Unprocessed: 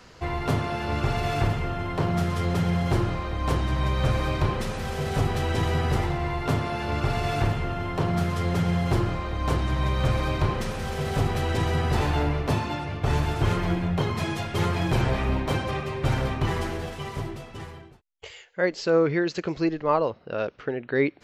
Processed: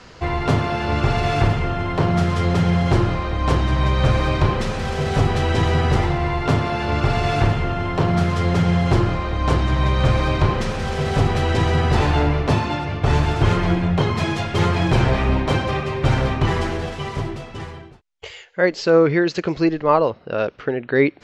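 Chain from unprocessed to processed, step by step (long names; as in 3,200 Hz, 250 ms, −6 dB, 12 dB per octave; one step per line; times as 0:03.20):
low-pass filter 7,100 Hz 12 dB per octave
level +6.5 dB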